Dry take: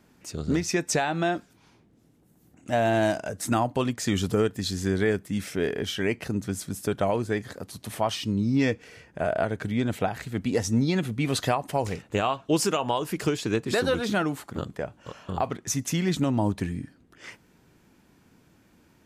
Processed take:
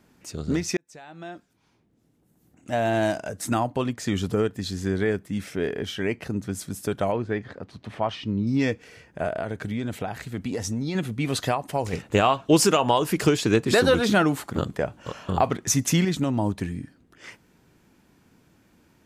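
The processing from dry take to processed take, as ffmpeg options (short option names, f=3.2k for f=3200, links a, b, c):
-filter_complex "[0:a]asettb=1/sr,asplit=3[a][b][c];[a]atrim=end=3.694[d];[b]atrim=start=3.69:end=6.55,asetpts=PTS-STARTPTS,afade=t=in:d=0.004:c=qsin,afade=t=out:st=2.856:d=0.004:c=qsin,highshelf=f=4k:g=-5.5[e];[c]atrim=start=6.546[f];[d][e]acrossfade=d=0.004:c1=hsin:c2=qsin[g];[g][f]acrossfade=d=0.004:c1=qsin:c2=hsin,asettb=1/sr,asplit=3[h][i][j];[h]atrim=end=7.124[k];[i]atrim=start=7.12:end=8.47,asetpts=PTS-STARTPTS,afade=t=in:d=0.004:c=qsin,afade=t=out:st=1.346:d=0.004:c=qsin,lowpass=2.9k[l];[j]atrim=start=8.466[m];[k][l]acrossfade=d=0.004:c1=hsin:c2=qsin[n];[n][m]acrossfade=d=0.004:c1=qsin:c2=hsin,asettb=1/sr,asplit=3[o][p][q];[o]atrim=end=9.284[r];[p]atrim=start=9.28:end=10.95,asetpts=PTS-STARTPTS,afade=t=in:d=0.004:c=qsin,afade=t=out:st=1.666:d=0.004:c=qsin,acompressor=threshold=-24dB:ratio=6:attack=3.2:release=140:knee=1:detection=peak[s];[q]atrim=start=10.946[t];[r][s]acrossfade=d=0.004:c1=hsin:c2=qsin[u];[u][t]acrossfade=d=0.004:c1=qsin:c2=hsin,asettb=1/sr,asplit=3[v][w][x];[v]atrim=end=11.934[y];[w]atrim=start=11.93:end=16.05,asetpts=PTS-STARTPTS,afade=t=in:d=0.004:c=qsin,afade=t=out:st=4.116:d=0.004:c=qsin,acontrast=49[z];[x]atrim=start=16.046[aa];[y][z]acrossfade=d=0.004:c1=hsin:c2=qsin[ab];[ab][aa]acrossfade=d=0.004:c1=qsin:c2=hsin,asplit=2[ac][ad];[ac]atrim=end=0.77,asetpts=PTS-STARTPTS,afade=t=out:st=0.766:d=0.004:c=hsin[ae];[ad]atrim=start=0.77,asetpts=PTS-STARTPTS,afade=t=in:d=2.23[af];[ae][af]concat=n=2:v=0:a=1"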